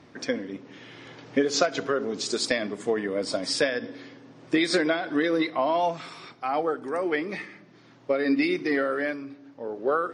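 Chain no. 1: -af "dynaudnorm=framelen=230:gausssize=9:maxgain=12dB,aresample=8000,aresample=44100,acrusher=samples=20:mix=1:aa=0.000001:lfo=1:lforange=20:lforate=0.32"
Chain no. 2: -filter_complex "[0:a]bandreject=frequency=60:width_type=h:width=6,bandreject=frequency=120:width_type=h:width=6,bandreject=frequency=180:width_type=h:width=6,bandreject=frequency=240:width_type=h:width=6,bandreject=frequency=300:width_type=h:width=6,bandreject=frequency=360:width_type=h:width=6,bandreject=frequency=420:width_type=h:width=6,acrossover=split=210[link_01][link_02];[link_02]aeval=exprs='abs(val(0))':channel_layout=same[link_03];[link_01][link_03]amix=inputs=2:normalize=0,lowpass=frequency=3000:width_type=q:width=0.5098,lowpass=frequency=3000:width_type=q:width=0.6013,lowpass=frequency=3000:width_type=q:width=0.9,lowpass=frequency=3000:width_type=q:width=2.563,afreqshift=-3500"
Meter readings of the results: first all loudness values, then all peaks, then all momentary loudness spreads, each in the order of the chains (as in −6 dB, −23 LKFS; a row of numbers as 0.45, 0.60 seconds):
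−18.0, −25.0 LKFS; −2.5, −10.0 dBFS; 17, 16 LU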